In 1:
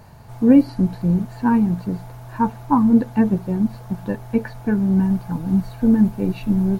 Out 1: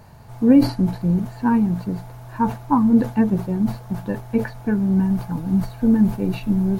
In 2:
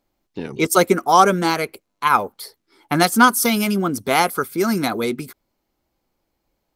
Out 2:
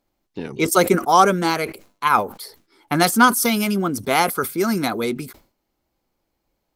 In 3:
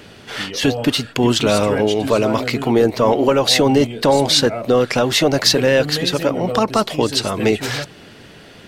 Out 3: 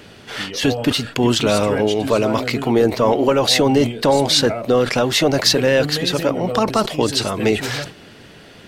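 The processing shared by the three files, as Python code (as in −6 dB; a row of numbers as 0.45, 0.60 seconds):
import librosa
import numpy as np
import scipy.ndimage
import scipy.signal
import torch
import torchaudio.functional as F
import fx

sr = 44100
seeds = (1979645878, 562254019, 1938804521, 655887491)

y = fx.sustainer(x, sr, db_per_s=150.0)
y = F.gain(torch.from_numpy(y), -1.0).numpy()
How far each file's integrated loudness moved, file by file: −1.0, −1.0, −1.0 LU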